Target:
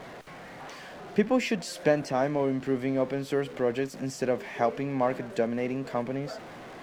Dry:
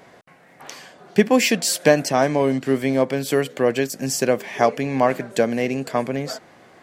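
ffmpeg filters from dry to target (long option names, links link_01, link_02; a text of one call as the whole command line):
ffmpeg -i in.wav -af "aeval=exprs='val(0)+0.5*0.0335*sgn(val(0))':channel_layout=same,aemphasis=mode=reproduction:type=75kf,volume=-8.5dB" out.wav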